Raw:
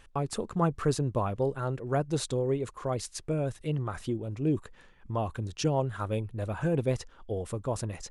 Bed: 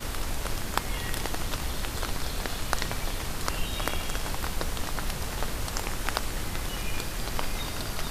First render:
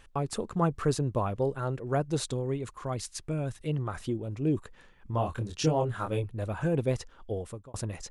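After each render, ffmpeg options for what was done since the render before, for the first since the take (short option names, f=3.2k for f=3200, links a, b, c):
-filter_complex "[0:a]asettb=1/sr,asplit=3[a][b][c];[a]atrim=end=2.334[d];[b]atrim=start=2.33:end=3.6,asetpts=PTS-STARTPTS,afade=t=in:d=0.004:c=qsin,afade=t=out:st=1.266:d=0.004:c=qsin,equalizer=f=490:w=1.4:g=-6[e];[c]atrim=start=3.596[f];[d][e]acrossfade=d=0.004:c1=hsin:c2=qsin[g];[g][f]acrossfade=d=0.004:c1=qsin:c2=hsin,asettb=1/sr,asplit=3[h][i][j];[h]atrim=end=5.114[k];[i]atrim=start=5.11:end=6.24,asetpts=PTS-STARTPTS,afade=t=in:d=0.004:c=qsin,afade=t=out:st=1.126:d=0.004:c=qsin,asplit=2[l][m];[m]adelay=25,volume=-3.5dB[n];[l][n]amix=inputs=2:normalize=0,atrim=end_sample=49833[o];[j]atrim=start=6.236[p];[k][o]acrossfade=d=0.004:c1=hsin:c2=qsin[q];[q][p]acrossfade=d=0.004:c1=qsin:c2=hsin,asplit=2[r][s];[r]atrim=end=7.74,asetpts=PTS-STARTPTS,afade=t=out:st=7.33:d=0.41[t];[s]atrim=start=7.74,asetpts=PTS-STARTPTS,afade=t=in:d=0.004:c=hsin[u];[t][u]concat=n=2:v=0:a=1"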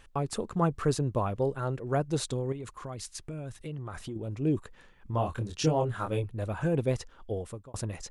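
-filter_complex "[0:a]asettb=1/sr,asplit=3[a][b][c];[a]atrim=end=2.524[d];[b]atrim=start=2.52:end=4.16,asetpts=PTS-STARTPTS,afade=t=in:d=0.004:c=qsin,afade=t=out:st=1.636:d=0.004:c=qsin,acompressor=threshold=-35dB:ratio=4:attack=3.2:release=140:knee=1:detection=peak[e];[c]atrim=start=4.156[f];[d][e]acrossfade=d=0.004:c1=hsin:c2=qsin[g];[g][f]acrossfade=d=0.004:c1=qsin:c2=hsin"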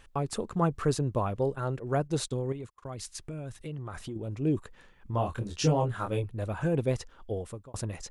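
-filter_complex "[0:a]asplit=3[a][b][c];[a]afade=t=out:st=1.52:d=0.02[d];[b]agate=range=-34dB:threshold=-42dB:ratio=16:release=100:detection=peak,afade=t=in:st=1.52:d=0.02,afade=t=out:st=2.91:d=0.02[e];[c]afade=t=in:st=2.91:d=0.02[f];[d][e][f]amix=inputs=3:normalize=0,asettb=1/sr,asplit=3[g][h][i];[g]atrim=end=5.414[j];[h]atrim=start=5.41:end=5.88,asetpts=PTS-STARTPTS,afade=t=in:d=0.004:c=qsin,afade=t=out:st=0.466:d=0.004:c=qsin,asplit=2[k][l];[l]adelay=14,volume=-5.5dB[m];[k][m]amix=inputs=2:normalize=0,atrim=end_sample=20727[n];[i]atrim=start=5.876[o];[j][n]acrossfade=d=0.004:c1=hsin:c2=qsin[p];[p][o]acrossfade=d=0.004:c1=qsin:c2=hsin"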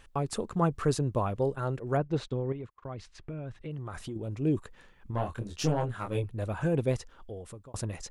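-filter_complex "[0:a]asettb=1/sr,asplit=3[a][b][c];[a]atrim=end=1.974[d];[b]atrim=start=1.97:end=3.71,asetpts=PTS-STARTPTS,afade=t=in:d=0.004:c=qsin,afade=t=out:st=1.736:d=0.004:c=qsin,lowpass=2.8k[e];[c]atrim=start=3.706[f];[d][e]acrossfade=d=0.004:c1=hsin:c2=qsin[g];[g][f]acrossfade=d=0.004:c1=qsin:c2=hsin,asettb=1/sr,asplit=3[h][i][j];[h]atrim=end=5.114[k];[i]atrim=start=5.11:end=6.15,asetpts=PTS-STARTPTS,afade=t=in:d=0.004:c=qsin,afade=t=out:st=1.036:d=0.004:c=qsin,aeval=exprs='(tanh(8.91*val(0)+0.6)-tanh(0.6))/8.91':c=same[l];[j]atrim=start=6.146[m];[k][l]acrossfade=d=0.004:c1=hsin:c2=qsin[n];[n][m]acrossfade=d=0.004:c1=qsin:c2=hsin,asettb=1/sr,asplit=3[o][p][q];[o]atrim=end=7.004[r];[p]atrim=start=7:end=7.74,asetpts=PTS-STARTPTS,afade=t=in:d=0.004:c=qsin,afade=t=out:st=0.736:d=0.004:c=qsin,acompressor=threshold=-43dB:ratio=2:attack=3.2:release=140:knee=1:detection=peak[s];[q]atrim=start=7.736[t];[r][s]acrossfade=d=0.004:c1=hsin:c2=qsin[u];[u][t]acrossfade=d=0.004:c1=qsin:c2=hsin"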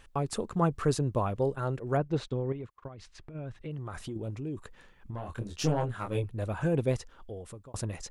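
-filter_complex "[0:a]asplit=3[a][b][c];[a]afade=t=out:st=2.87:d=0.02[d];[b]acompressor=threshold=-42dB:ratio=6:attack=3.2:release=140:knee=1:detection=peak,afade=t=in:st=2.87:d=0.02,afade=t=out:st=3.34:d=0.02[e];[c]afade=t=in:st=3.34:d=0.02[f];[d][e][f]amix=inputs=3:normalize=0,asettb=1/sr,asplit=3[g][h][i];[g]atrim=end=4.304[j];[h]atrim=start=4.3:end=5.3,asetpts=PTS-STARTPTS,afade=t=in:d=0.004:c=qsin,afade=t=out:st=0.996:d=0.004:c=qsin,acompressor=threshold=-34dB:ratio=4:attack=3.2:release=140:knee=1:detection=peak[k];[i]atrim=start=5.296[l];[j][k]acrossfade=d=0.004:c1=hsin:c2=qsin[m];[m][l]acrossfade=d=0.004:c1=qsin:c2=hsin"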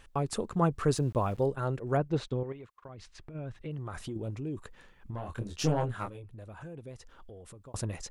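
-filter_complex "[0:a]asettb=1/sr,asplit=3[a][b][c];[a]atrim=end=0.954[d];[b]atrim=start=0.95:end=1.46,asetpts=PTS-STARTPTS,afade=t=in:d=0.004:c=qsin,afade=t=out:st=0.506:d=0.004:c=qsin,aeval=exprs='val(0)*gte(abs(val(0)),0.00316)':c=same[e];[c]atrim=start=1.456[f];[d][e]acrossfade=d=0.004:c1=hsin:c2=qsin[g];[g][f]acrossfade=d=0.004:c1=qsin:c2=hsin,asettb=1/sr,asplit=3[h][i][j];[h]atrim=end=2.434[k];[i]atrim=start=2.43:end=2.89,asetpts=PTS-STARTPTS,afade=t=in:d=0.004:c=qsin,afade=t=out:st=0.456:d=0.004:c=qsin,lowshelf=f=480:g=-10[l];[j]atrim=start=2.886[m];[k][l]acrossfade=d=0.004:c1=hsin:c2=qsin[n];[n][m]acrossfade=d=0.004:c1=qsin:c2=hsin,asettb=1/sr,asplit=3[o][p][q];[o]atrim=end=6.094[r];[p]atrim=start=6.09:end=7.65,asetpts=PTS-STARTPTS,afade=t=in:d=0.004:c=qsin,afade=t=out:st=1.556:d=0.004:c=qsin,acompressor=threshold=-47dB:ratio=3:attack=3.2:release=140:knee=1:detection=peak[s];[q]atrim=start=7.646[t];[r][s]acrossfade=d=0.004:c1=hsin:c2=qsin[u];[u][t]acrossfade=d=0.004:c1=qsin:c2=hsin"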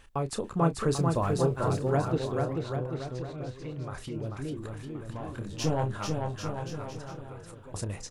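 -filter_complex "[0:a]asplit=2[a][b];[b]adelay=30,volume=-11dB[c];[a][c]amix=inputs=2:normalize=0,asplit=2[d][e];[e]aecho=0:1:440|792|1074|1299|1479:0.631|0.398|0.251|0.158|0.1[f];[d][f]amix=inputs=2:normalize=0"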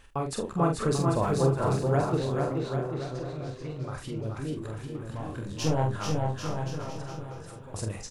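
-filter_complex "[0:a]asplit=2[a][b];[b]adelay=45,volume=-5dB[c];[a][c]amix=inputs=2:normalize=0,asplit=2[d][e];[e]aecho=0:1:419:0.282[f];[d][f]amix=inputs=2:normalize=0"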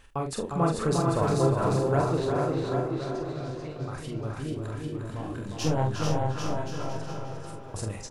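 -filter_complex "[0:a]asplit=2[a][b];[b]adelay=355,lowpass=f=4.8k:p=1,volume=-4.5dB,asplit=2[c][d];[d]adelay=355,lowpass=f=4.8k:p=1,volume=0.34,asplit=2[e][f];[f]adelay=355,lowpass=f=4.8k:p=1,volume=0.34,asplit=2[g][h];[h]adelay=355,lowpass=f=4.8k:p=1,volume=0.34[i];[a][c][e][g][i]amix=inputs=5:normalize=0"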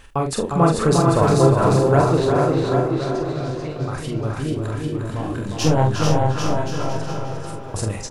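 -af "volume=9dB"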